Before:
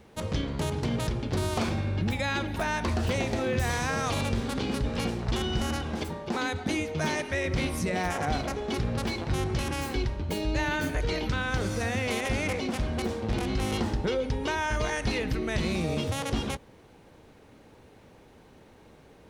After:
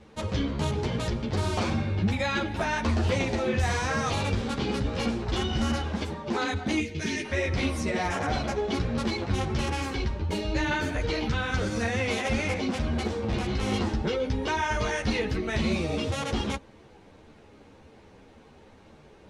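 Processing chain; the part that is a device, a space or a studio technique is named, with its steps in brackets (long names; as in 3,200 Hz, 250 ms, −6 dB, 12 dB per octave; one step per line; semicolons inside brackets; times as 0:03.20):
0:06.80–0:07.25: flat-topped bell 850 Hz −14.5 dB
string-machine ensemble chorus (string-ensemble chorus; low-pass filter 7,700 Hz 12 dB per octave)
level +4.5 dB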